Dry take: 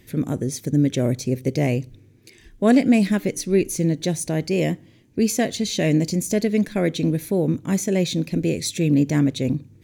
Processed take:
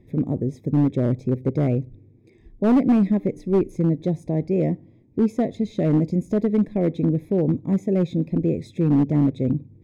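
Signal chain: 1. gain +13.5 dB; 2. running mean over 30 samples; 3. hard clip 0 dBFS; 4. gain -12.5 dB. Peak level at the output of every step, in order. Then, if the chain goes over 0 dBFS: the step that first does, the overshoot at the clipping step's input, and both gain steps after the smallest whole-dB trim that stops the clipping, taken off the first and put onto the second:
+9.0, +6.5, 0.0, -12.5 dBFS; step 1, 6.5 dB; step 1 +6.5 dB, step 4 -5.5 dB

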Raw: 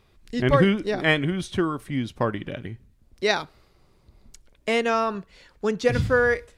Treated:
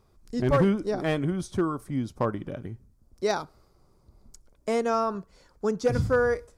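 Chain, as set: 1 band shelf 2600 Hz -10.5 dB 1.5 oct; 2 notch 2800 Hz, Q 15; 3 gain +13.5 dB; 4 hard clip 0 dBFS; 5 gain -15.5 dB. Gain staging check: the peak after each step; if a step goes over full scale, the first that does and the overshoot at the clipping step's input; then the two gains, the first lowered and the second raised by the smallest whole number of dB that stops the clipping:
-6.5, -6.5, +7.0, 0.0, -15.5 dBFS; step 3, 7.0 dB; step 3 +6.5 dB, step 5 -8.5 dB

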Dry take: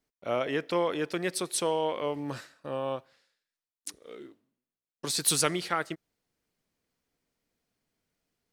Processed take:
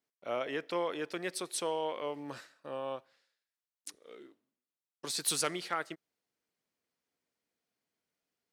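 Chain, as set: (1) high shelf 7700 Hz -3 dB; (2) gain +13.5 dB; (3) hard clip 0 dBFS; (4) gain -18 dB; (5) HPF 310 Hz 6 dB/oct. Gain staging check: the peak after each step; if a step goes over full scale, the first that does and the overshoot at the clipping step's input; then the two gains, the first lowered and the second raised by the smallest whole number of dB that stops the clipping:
-9.5, +4.0, 0.0, -18.0, -17.0 dBFS; step 2, 4.0 dB; step 2 +9.5 dB, step 4 -14 dB

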